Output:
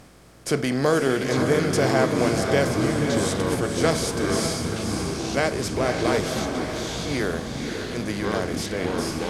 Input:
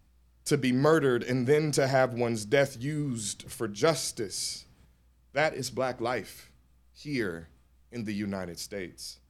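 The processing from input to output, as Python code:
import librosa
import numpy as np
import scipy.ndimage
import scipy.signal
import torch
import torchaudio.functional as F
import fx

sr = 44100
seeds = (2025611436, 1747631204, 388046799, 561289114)

y = fx.bin_compress(x, sr, power=0.6)
y = fx.echo_diffused(y, sr, ms=532, feedback_pct=47, wet_db=-5.0)
y = fx.echo_pitch(y, sr, ms=648, semitones=-6, count=3, db_per_echo=-6.0)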